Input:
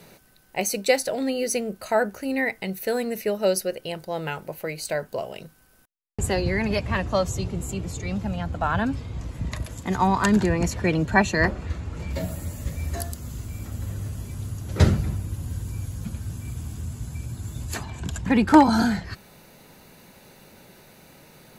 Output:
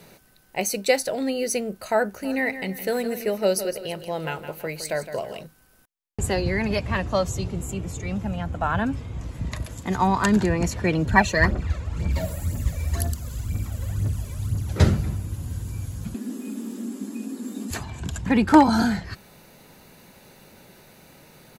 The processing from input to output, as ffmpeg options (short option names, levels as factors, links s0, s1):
-filter_complex "[0:a]asplit=3[s0][s1][s2];[s0]afade=t=out:st=2.21:d=0.02[s3];[s1]aecho=1:1:163|326|489|652:0.282|0.11|0.0429|0.0167,afade=t=in:st=2.21:d=0.02,afade=t=out:st=5.43:d=0.02[s4];[s2]afade=t=in:st=5.43:d=0.02[s5];[s3][s4][s5]amix=inputs=3:normalize=0,asettb=1/sr,asplit=3[s6][s7][s8];[s6]atrim=end=7.614[s9];[s7]atrim=start=7.61:end=9.23,asetpts=PTS-STARTPTS,afade=t=in:d=0.004:c=qsin,afade=t=out:st=1.616:d=0.004:c=qsin,equalizer=f=4400:t=o:w=0.45:g=-6.5[s10];[s8]atrim=start=9.226[s11];[s9][s10]acrossfade=d=0.004:c1=hsin:c2=qsin[s12];[s12][s11]acrossfade=d=0.004:c1=qsin:c2=hsin,asettb=1/sr,asplit=3[s13][s14][s15];[s13]atrim=end=11.064[s16];[s14]atrim=start=11.06:end=14.73,asetpts=PTS-STARTPTS,afade=t=in:d=0.004:c=qsin,afade=t=out:st=3.666:d=0.004:c=qsin,aphaser=in_gain=1:out_gain=1:delay=2.1:decay=0.6:speed=2:type=triangular[s17];[s15]atrim=start=14.726[s18];[s16][s17]acrossfade=d=0.004:c1=hsin:c2=qsin[s19];[s19][s18]acrossfade=d=0.004:c1=qsin:c2=hsin,asettb=1/sr,asplit=3[s20][s21][s22];[s20]atrim=end=16.144[s23];[s21]atrim=start=16.14:end=17.71,asetpts=PTS-STARTPTS,afade=t=in:d=0.004:c=qsin,afade=t=out:st=1.566:d=0.004:c=qsin,afreqshift=150[s24];[s22]atrim=start=17.706[s25];[s23][s24]acrossfade=d=0.004:c1=hsin:c2=qsin[s26];[s26][s25]acrossfade=d=0.004:c1=qsin:c2=hsin"